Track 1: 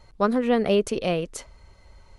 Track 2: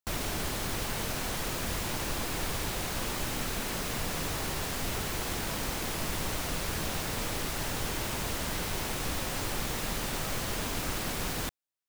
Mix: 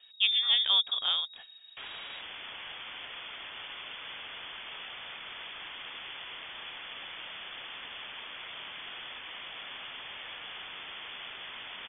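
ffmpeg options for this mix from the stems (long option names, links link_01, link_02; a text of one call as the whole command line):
ffmpeg -i stem1.wav -i stem2.wav -filter_complex "[0:a]volume=-5dB[link_01];[1:a]highpass=frequency=340:width=0.5412,highpass=frequency=340:width=1.3066,adelay=1700,volume=-5dB[link_02];[link_01][link_02]amix=inputs=2:normalize=0,lowpass=frequency=3200:width_type=q:width=0.5098,lowpass=frequency=3200:width_type=q:width=0.6013,lowpass=frequency=3200:width_type=q:width=0.9,lowpass=frequency=3200:width_type=q:width=2.563,afreqshift=-3800" out.wav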